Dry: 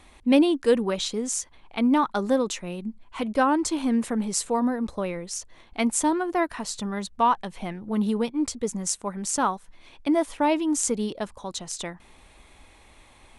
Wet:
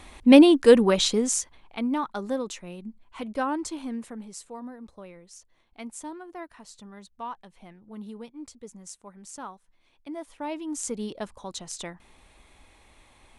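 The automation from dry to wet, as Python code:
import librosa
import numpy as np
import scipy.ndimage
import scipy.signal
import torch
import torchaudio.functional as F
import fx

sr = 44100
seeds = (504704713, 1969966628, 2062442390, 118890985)

y = fx.gain(x, sr, db=fx.line((1.14, 5.5), (1.89, -6.5), (3.59, -6.5), (4.42, -15.5), (10.09, -15.5), (11.18, -3.5)))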